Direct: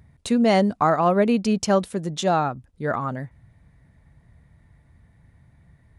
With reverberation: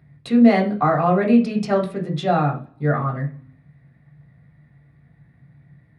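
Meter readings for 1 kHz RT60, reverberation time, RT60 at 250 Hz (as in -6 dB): 0.40 s, 0.40 s, 0.65 s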